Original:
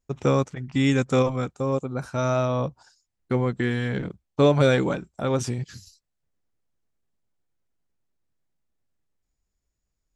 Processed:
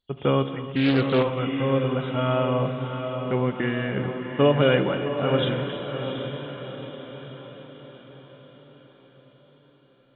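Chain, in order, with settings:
hearing-aid frequency compression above 2,700 Hz 4 to 1
low-shelf EQ 89 Hz −10 dB
feedback delay with all-pass diffusion 731 ms, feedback 51%, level −7 dB
reverb whose tail is shaped and stops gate 360 ms flat, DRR 9.5 dB
0:00.70–0:01.39: highs frequency-modulated by the lows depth 0.3 ms

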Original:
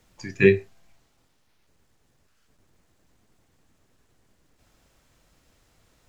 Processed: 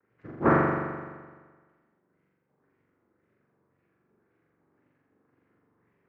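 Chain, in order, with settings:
running median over 41 samples
cochlear-implant simulation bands 3
auto-filter low-pass sine 1.9 Hz 890–2,500 Hz
flutter between parallel walls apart 7.3 metres, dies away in 1.5 s
level −7 dB

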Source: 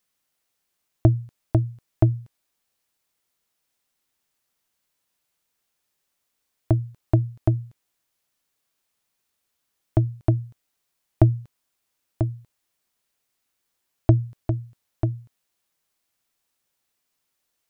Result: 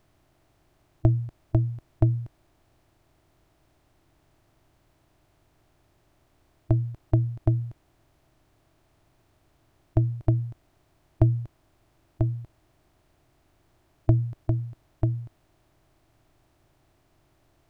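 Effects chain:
compressor on every frequency bin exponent 0.6
low-shelf EQ 66 Hz +9.5 dB
level −7 dB

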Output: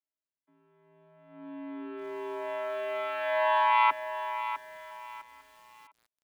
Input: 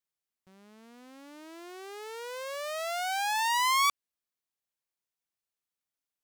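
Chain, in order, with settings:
channel vocoder with a chord as carrier bare fifth, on A#3
noise gate −43 dBFS, range −8 dB
on a send: repeating echo 502 ms, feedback 59%, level −22.5 dB
on the sum: single-sideband voice off tune −71 Hz 350–3,300 Hz
feedback echo at a low word length 654 ms, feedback 35%, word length 9 bits, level −10.5 dB
level +3 dB

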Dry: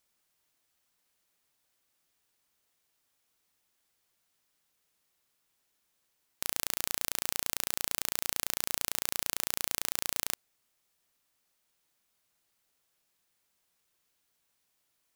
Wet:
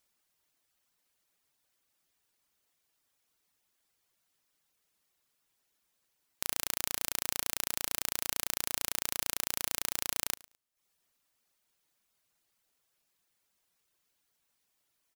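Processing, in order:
reverb reduction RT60 0.59 s
repeating echo 107 ms, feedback 21%, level −22 dB

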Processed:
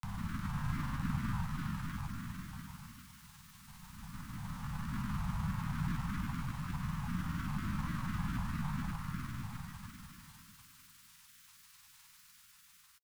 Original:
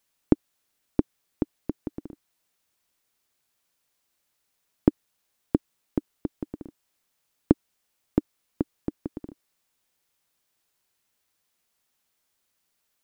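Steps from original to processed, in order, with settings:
spectrum smeared in time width 1,420 ms
echo through a band-pass that steps 279 ms, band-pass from 710 Hz, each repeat 0.7 octaves, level −3.5 dB
feedback delay network reverb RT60 1.3 s, low-frequency decay 1.5×, high-frequency decay 0.95×, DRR 5.5 dB
pitch-shifted copies added +12 semitones −1 dB
elliptic band-stop filter 190–1,100 Hz, stop band 40 dB
granular cloud, pitch spread up and down by 3 semitones
level +18 dB

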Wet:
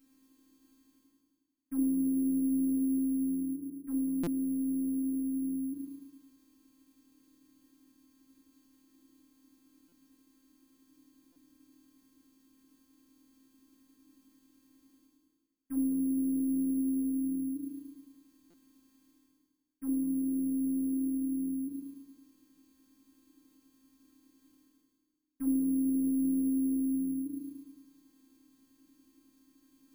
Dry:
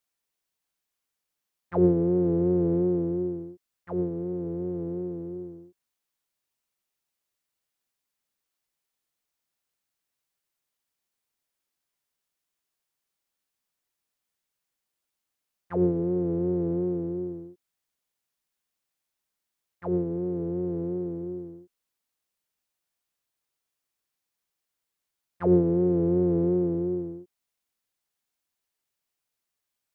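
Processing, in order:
phases set to zero 265 Hz
reversed playback
upward compression, threshold −37 dBFS
reversed playback
feedback delay network reverb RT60 1.2 s, low-frequency decay 1×, high-frequency decay 0.65×, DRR −5 dB
downward compressor 3 to 1, threshold −45 dBFS, peak gain reduction 20.5 dB
bad sample-rate conversion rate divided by 4×, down filtered, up zero stuff
drawn EQ curve 100 Hz 0 dB, 330 Hz +14 dB, 580 Hz −21 dB, 880 Hz −15 dB
buffer that repeats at 0:04.23/0:09.88/0:11.32/0:18.50, samples 256, times 6

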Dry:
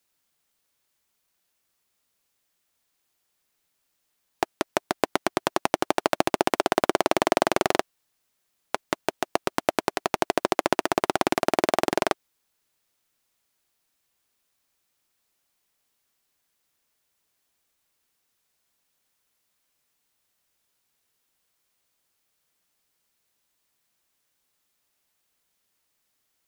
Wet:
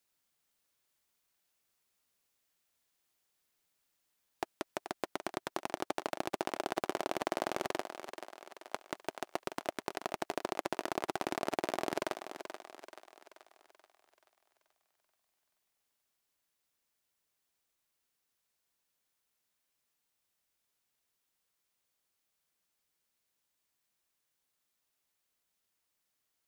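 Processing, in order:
speech leveller
brickwall limiter −8 dBFS, peak gain reduction 9 dB
on a send: feedback echo with a high-pass in the loop 432 ms, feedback 52%, high-pass 300 Hz, level −9 dB
on the sum: level −8 dB

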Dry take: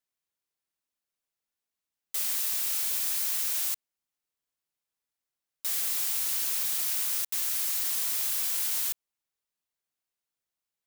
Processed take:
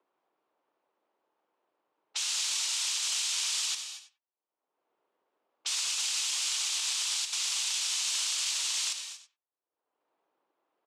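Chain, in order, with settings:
spectral tilt +4 dB per octave
cochlear-implant simulation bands 4
on a send: repeating echo 95 ms, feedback 19%, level −15 dB
on the sum: low-pass that shuts in the quiet parts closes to 530 Hz, open at −26.5 dBFS
brickwall limiter −22 dBFS, peak gain reduction 7 dB
upward compression, threshold −53 dBFS
high-pass filter 410 Hz 12 dB per octave
reverb whose tail is shaped and stops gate 260 ms rising, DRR 8.5 dB
one half of a high-frequency compander decoder only

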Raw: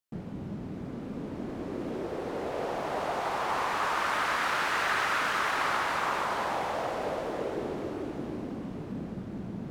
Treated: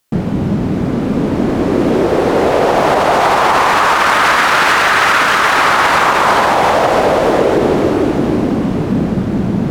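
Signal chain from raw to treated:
boost into a limiter +23.5 dB
level −1 dB

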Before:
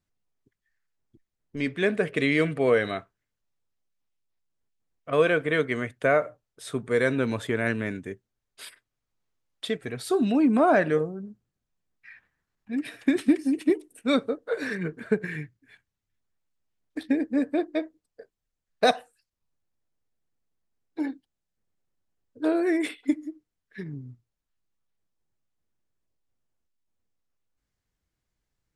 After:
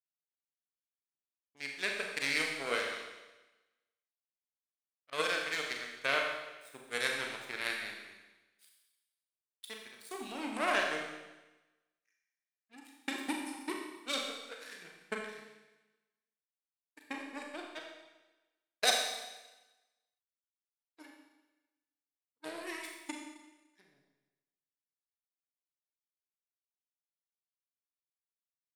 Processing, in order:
power curve on the samples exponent 2
spectral tilt +4.5 dB per octave
four-comb reverb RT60 1.1 s, combs from 29 ms, DRR 0.5 dB
level −6.5 dB

